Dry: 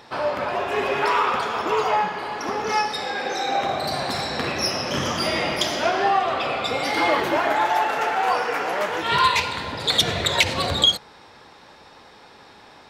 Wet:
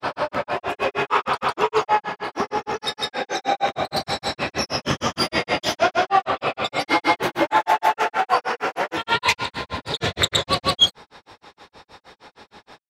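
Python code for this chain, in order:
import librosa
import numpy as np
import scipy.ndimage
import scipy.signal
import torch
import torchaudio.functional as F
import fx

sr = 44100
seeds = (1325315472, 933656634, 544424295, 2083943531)

y = fx.granulator(x, sr, seeds[0], grain_ms=133.0, per_s=6.4, spray_ms=100.0, spread_st=0)
y = y * librosa.db_to_amplitude(5.0)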